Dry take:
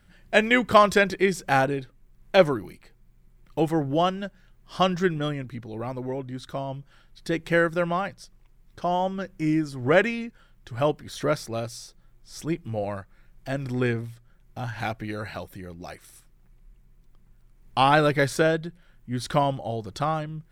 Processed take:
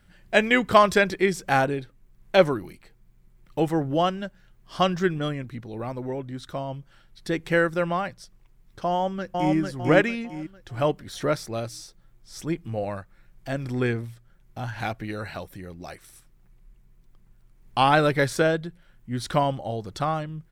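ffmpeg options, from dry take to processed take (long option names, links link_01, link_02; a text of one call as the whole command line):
ffmpeg -i in.wav -filter_complex "[0:a]asplit=2[link_01][link_02];[link_02]afade=type=in:start_time=8.89:duration=0.01,afade=type=out:start_time=9.56:duration=0.01,aecho=0:1:450|900|1350|1800|2250:0.794328|0.278015|0.0973052|0.0340568|0.0119199[link_03];[link_01][link_03]amix=inputs=2:normalize=0" out.wav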